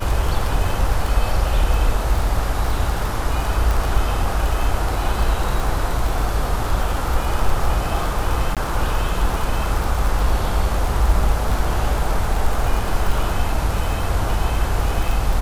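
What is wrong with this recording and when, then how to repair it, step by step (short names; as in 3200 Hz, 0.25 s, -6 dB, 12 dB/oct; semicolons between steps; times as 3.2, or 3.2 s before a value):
crackle 32/s -21 dBFS
3.71 pop
8.55–8.57 gap 17 ms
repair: de-click; interpolate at 8.55, 17 ms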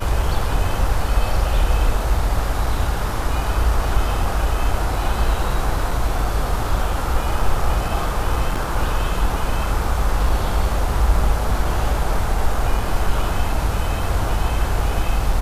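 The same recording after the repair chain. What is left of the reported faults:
none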